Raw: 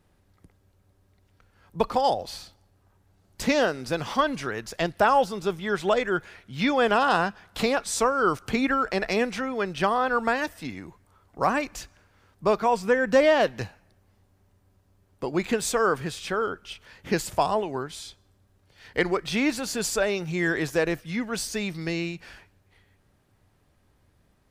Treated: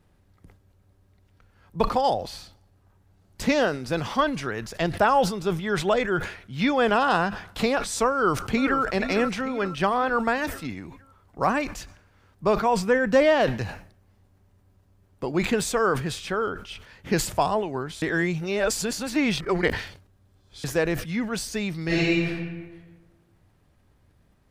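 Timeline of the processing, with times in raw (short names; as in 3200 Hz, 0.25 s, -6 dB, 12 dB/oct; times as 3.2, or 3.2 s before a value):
8.11–8.82 echo throw 0.46 s, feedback 50%, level -10 dB
18.02–20.64 reverse
21.86–22.26 reverb throw, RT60 1.4 s, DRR -8.5 dB
whole clip: tone controls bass +3 dB, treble -2 dB; sustainer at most 100 dB/s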